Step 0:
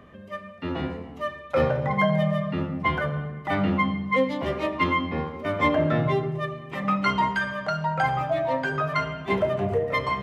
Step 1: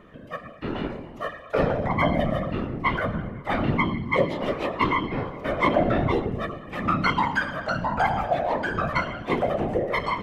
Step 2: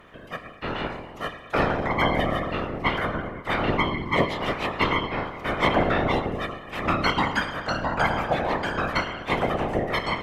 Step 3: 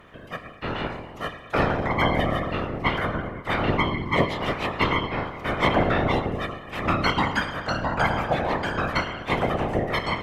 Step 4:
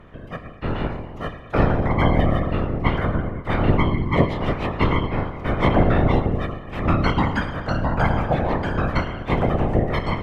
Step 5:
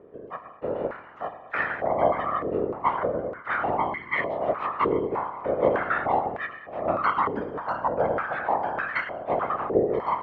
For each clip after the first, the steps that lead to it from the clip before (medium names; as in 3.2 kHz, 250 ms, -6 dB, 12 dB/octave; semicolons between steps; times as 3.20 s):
whisper effect
spectral peaks clipped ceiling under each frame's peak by 14 dB
peaking EQ 100 Hz +3.5 dB 1.5 oct
tilt EQ -2.5 dB/octave
step-sequenced band-pass 3.3 Hz 430–1800 Hz; trim +7 dB